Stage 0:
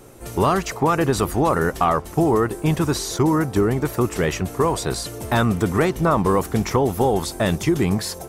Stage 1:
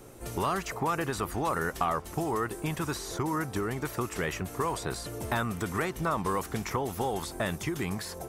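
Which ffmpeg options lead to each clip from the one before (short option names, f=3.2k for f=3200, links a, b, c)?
-filter_complex "[0:a]acrossover=split=980|2400|7700[a][b][c][d];[a]acompressor=threshold=-27dB:ratio=4[e];[b]acompressor=threshold=-25dB:ratio=4[f];[c]acompressor=threshold=-40dB:ratio=4[g];[d]acompressor=threshold=-40dB:ratio=4[h];[e][f][g][h]amix=inputs=4:normalize=0,volume=-4.5dB"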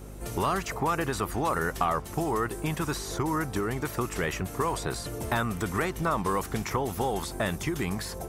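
-af "aeval=exprs='val(0)+0.00631*(sin(2*PI*50*n/s)+sin(2*PI*2*50*n/s)/2+sin(2*PI*3*50*n/s)/3+sin(2*PI*4*50*n/s)/4+sin(2*PI*5*50*n/s)/5)':c=same,volume=2dB"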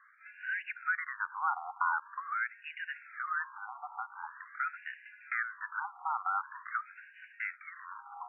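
-af "highpass=f=490:t=q:w=0.5412,highpass=f=490:t=q:w=1.307,lowpass=f=2.5k:t=q:w=0.5176,lowpass=f=2.5k:t=q:w=0.7071,lowpass=f=2.5k:t=q:w=1.932,afreqshift=290,afftfilt=real='re*between(b*sr/1024,990*pow(2100/990,0.5+0.5*sin(2*PI*0.45*pts/sr))/1.41,990*pow(2100/990,0.5+0.5*sin(2*PI*0.45*pts/sr))*1.41)':imag='im*between(b*sr/1024,990*pow(2100/990,0.5+0.5*sin(2*PI*0.45*pts/sr))/1.41,990*pow(2100/990,0.5+0.5*sin(2*PI*0.45*pts/sr))*1.41)':win_size=1024:overlap=0.75,volume=-2dB"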